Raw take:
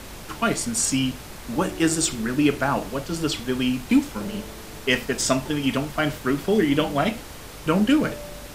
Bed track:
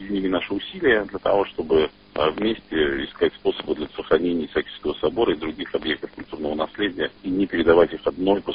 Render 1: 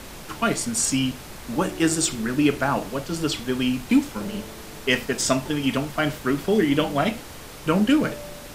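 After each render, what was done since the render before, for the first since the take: de-hum 50 Hz, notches 2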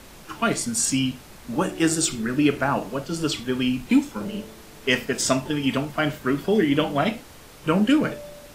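noise print and reduce 6 dB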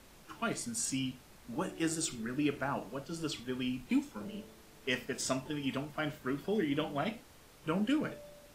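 gain -12.5 dB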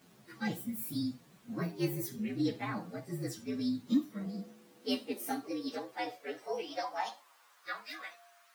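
inharmonic rescaling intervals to 120%; high-pass sweep 160 Hz -> 1300 Hz, 4–7.86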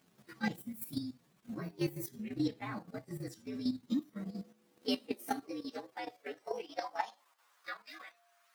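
transient shaper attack +4 dB, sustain -6 dB; level quantiser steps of 10 dB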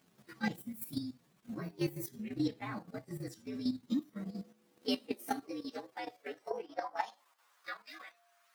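6.5–6.97 resonant high shelf 2100 Hz -7.5 dB, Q 1.5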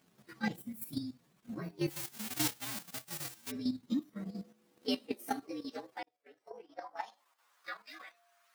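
1.89–3.5 spectral whitening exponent 0.1; 6.03–7.72 fade in

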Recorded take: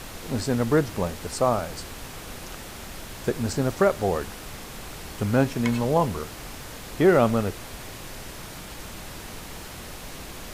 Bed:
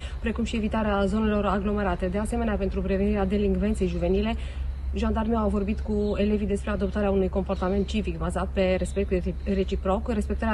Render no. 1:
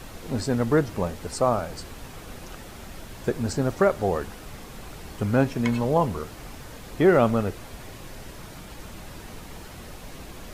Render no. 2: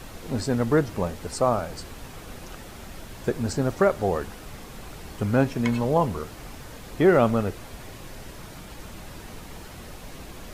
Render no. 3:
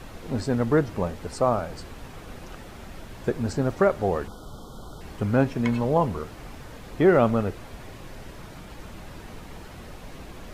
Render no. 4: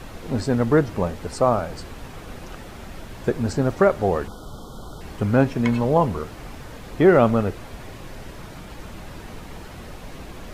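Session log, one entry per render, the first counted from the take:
denoiser 6 dB, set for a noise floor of -40 dBFS
nothing audible
4.28–5.01 spectral delete 1500–3000 Hz; high shelf 4600 Hz -8 dB
gain +3.5 dB

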